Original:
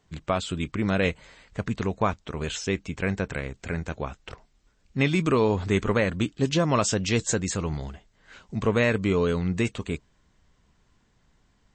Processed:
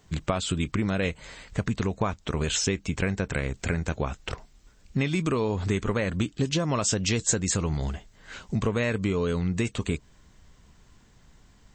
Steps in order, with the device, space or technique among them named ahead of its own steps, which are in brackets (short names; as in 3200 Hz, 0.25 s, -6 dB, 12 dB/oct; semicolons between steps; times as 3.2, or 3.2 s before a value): ASMR close-microphone chain (low shelf 170 Hz +3.5 dB; compressor 6:1, threshold -29 dBFS, peak gain reduction 12.5 dB; high shelf 6700 Hz +8 dB); gain +6 dB